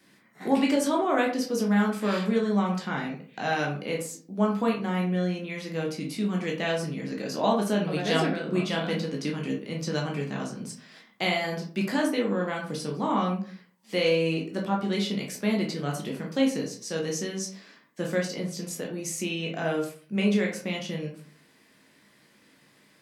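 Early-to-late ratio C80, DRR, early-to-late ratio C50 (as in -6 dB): 11.5 dB, -1.0 dB, 7.0 dB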